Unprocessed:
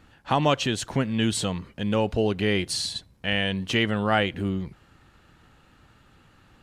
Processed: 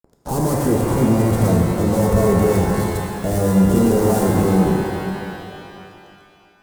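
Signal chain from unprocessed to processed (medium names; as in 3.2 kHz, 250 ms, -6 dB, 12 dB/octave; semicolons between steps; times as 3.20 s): 3.64–4.23 s: flutter echo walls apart 5.2 m, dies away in 0.51 s; LFO low-pass saw up 7.4 Hz 730–1500 Hz; 1.18–2.72 s: comb 1.5 ms, depth 94%; fuzz box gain 45 dB, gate -45 dBFS; FFT filter 450 Hz 0 dB, 2.5 kHz -27 dB, 8.5 kHz -1 dB; pitch-shifted reverb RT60 2.5 s, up +12 st, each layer -8 dB, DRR -0.5 dB; trim -2.5 dB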